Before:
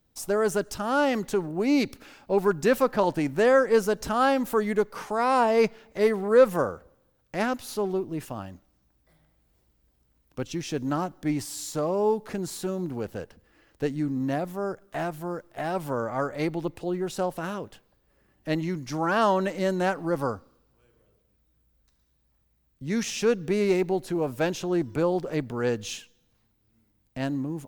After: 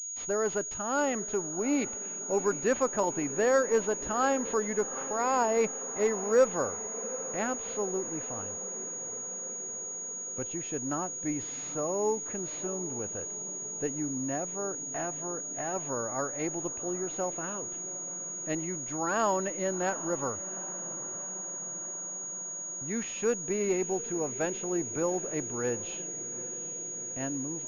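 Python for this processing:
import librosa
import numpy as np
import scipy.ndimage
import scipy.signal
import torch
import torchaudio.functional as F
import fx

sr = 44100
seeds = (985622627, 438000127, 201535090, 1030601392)

y = fx.echo_diffused(x, sr, ms=784, feedback_pct=68, wet_db=-16.0)
y = fx.dynamic_eq(y, sr, hz=160.0, q=1.5, threshold_db=-43.0, ratio=4.0, max_db=-5)
y = fx.pwm(y, sr, carrier_hz=6700.0)
y = y * librosa.db_to_amplitude(-5.0)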